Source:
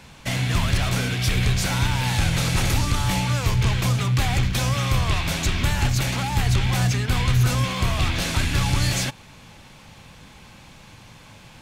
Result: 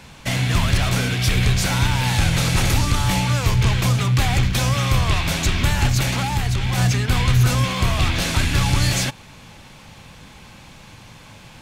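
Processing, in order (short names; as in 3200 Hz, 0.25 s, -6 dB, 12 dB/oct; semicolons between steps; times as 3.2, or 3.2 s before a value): 6.24–6.78 compressor, threshold -20 dBFS, peak gain reduction 5.5 dB; gain +3 dB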